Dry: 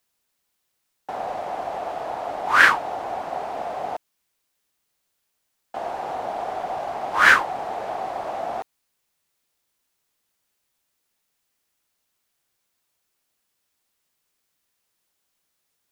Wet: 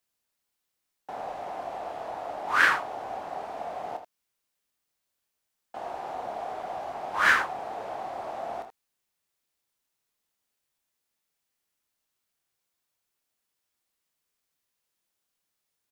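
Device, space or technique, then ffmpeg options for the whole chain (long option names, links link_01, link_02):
slapback doubling: -filter_complex "[0:a]asplit=3[link_01][link_02][link_03];[link_02]adelay=27,volume=-8.5dB[link_04];[link_03]adelay=80,volume=-9.5dB[link_05];[link_01][link_04][link_05]amix=inputs=3:normalize=0,volume=-7.5dB"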